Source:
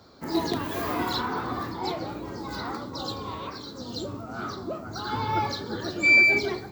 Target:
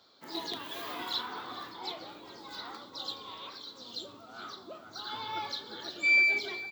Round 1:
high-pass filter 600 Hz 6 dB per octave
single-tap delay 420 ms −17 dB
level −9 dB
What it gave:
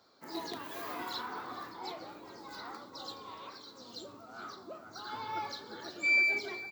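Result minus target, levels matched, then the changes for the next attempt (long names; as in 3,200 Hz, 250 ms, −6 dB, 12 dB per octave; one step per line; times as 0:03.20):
4,000 Hz band −4.0 dB
add after high-pass filter: parametric band 3,400 Hz +11.5 dB 0.63 octaves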